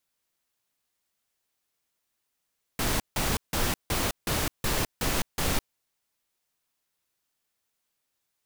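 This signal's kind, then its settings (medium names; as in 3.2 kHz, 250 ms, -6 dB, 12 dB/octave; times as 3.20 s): noise bursts pink, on 0.21 s, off 0.16 s, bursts 8, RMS -26.5 dBFS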